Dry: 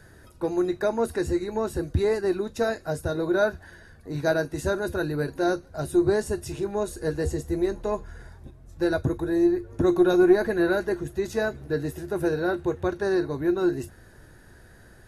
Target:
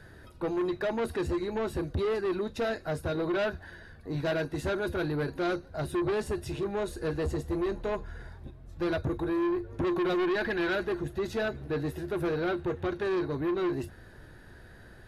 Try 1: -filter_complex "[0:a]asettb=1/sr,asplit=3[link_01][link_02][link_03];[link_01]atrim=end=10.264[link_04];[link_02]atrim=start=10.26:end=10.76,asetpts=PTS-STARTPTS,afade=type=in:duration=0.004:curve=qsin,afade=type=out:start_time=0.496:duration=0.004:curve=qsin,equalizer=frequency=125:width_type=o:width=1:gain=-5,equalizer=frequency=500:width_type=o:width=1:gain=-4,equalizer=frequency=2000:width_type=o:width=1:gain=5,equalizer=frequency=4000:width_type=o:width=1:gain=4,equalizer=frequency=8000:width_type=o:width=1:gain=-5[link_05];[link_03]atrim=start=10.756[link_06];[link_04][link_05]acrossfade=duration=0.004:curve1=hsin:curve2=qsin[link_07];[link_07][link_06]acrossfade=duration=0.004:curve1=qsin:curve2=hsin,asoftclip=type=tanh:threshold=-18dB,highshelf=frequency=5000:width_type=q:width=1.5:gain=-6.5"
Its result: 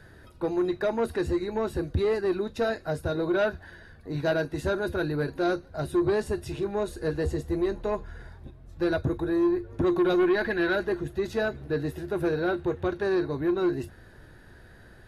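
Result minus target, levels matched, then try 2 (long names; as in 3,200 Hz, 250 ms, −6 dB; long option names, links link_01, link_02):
soft clipping: distortion −7 dB
-filter_complex "[0:a]asettb=1/sr,asplit=3[link_01][link_02][link_03];[link_01]atrim=end=10.264[link_04];[link_02]atrim=start=10.26:end=10.76,asetpts=PTS-STARTPTS,afade=type=in:duration=0.004:curve=qsin,afade=type=out:start_time=0.496:duration=0.004:curve=qsin,equalizer=frequency=125:width_type=o:width=1:gain=-5,equalizer=frequency=500:width_type=o:width=1:gain=-4,equalizer=frequency=2000:width_type=o:width=1:gain=5,equalizer=frequency=4000:width_type=o:width=1:gain=4,equalizer=frequency=8000:width_type=o:width=1:gain=-5[link_05];[link_03]atrim=start=10.756[link_06];[link_04][link_05]acrossfade=duration=0.004:curve1=hsin:curve2=qsin[link_07];[link_07][link_06]acrossfade=duration=0.004:curve1=qsin:curve2=hsin,asoftclip=type=tanh:threshold=-25.5dB,highshelf=frequency=5000:width_type=q:width=1.5:gain=-6.5"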